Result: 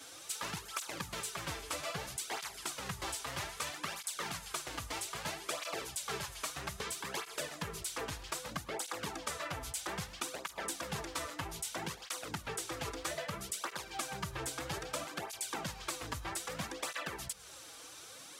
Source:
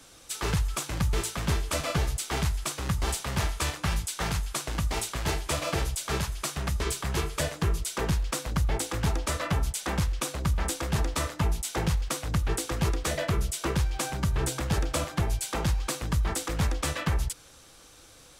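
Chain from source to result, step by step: HPF 470 Hz 6 dB/oct; compressor 4:1, threshold -41 dBFS, peak gain reduction 12.5 dB; on a send at -18.5 dB: reverb RT60 0.45 s, pre-delay 0.104 s; on the sum: tape flanging out of phase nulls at 0.62 Hz, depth 5.7 ms; gain +6 dB

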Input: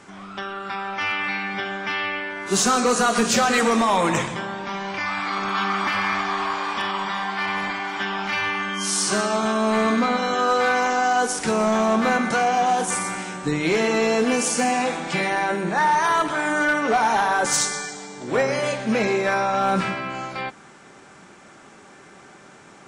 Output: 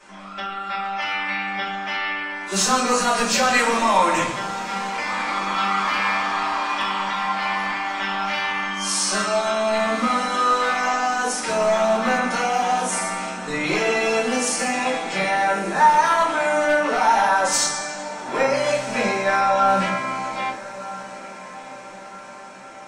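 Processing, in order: low shelf 340 Hz -11.5 dB; diffused feedback echo 1.293 s, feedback 55%, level -16 dB; shoebox room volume 180 m³, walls furnished, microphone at 5.4 m; gain -8 dB

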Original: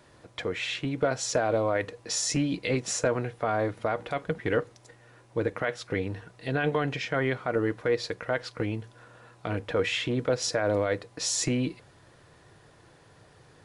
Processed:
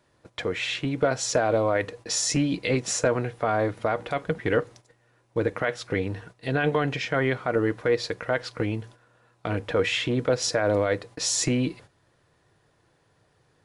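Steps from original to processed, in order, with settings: gate -48 dBFS, range -12 dB; gain +3 dB

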